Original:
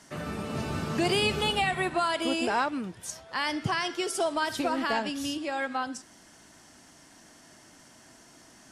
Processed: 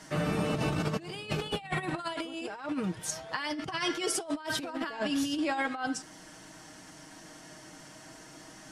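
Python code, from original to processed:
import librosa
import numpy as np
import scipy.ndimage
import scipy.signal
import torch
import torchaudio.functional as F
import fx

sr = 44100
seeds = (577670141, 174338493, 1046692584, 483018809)

y = fx.high_shelf(x, sr, hz=4900.0, db=-4.0)
y = y + 0.56 * np.pad(y, (int(6.4 * sr / 1000.0), 0))[:len(y)]
y = fx.over_compress(y, sr, threshold_db=-32.0, ratio=-0.5)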